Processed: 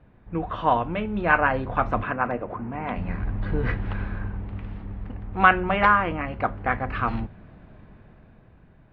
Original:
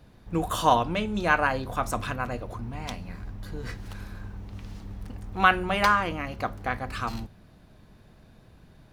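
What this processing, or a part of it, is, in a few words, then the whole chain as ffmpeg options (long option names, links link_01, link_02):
action camera in a waterproof case: -filter_complex "[0:a]asettb=1/sr,asplit=3[link_01][link_02][link_03];[link_01]atrim=end=2.034[link_04];[link_02]atrim=start=2.03:end=2.96,asetpts=PTS-STARTPTS,afade=type=in:duration=0.004:curve=qsin,afade=type=out:start_time=0.926:duration=0.004:curve=qsin,acrossover=split=160 2800:gain=0.2 1 0.0794[link_05][link_06][link_07];[link_05][link_06][link_07]amix=inputs=3:normalize=0[link_08];[link_03]atrim=start=2.956[link_09];[link_04][link_08]acrossfade=duration=0.004:curve1=hsin:curve2=qsin[link_10];[link_10][link_09]acrossfade=duration=0.004:curve1=qsin:curve2=hsin,lowpass=frequency=2500:width=0.5412,lowpass=frequency=2500:width=1.3066,dynaudnorm=framelen=250:gausssize=11:maxgain=14dB,volume=-1dB" -ar 44100 -c:a aac -b:a 48k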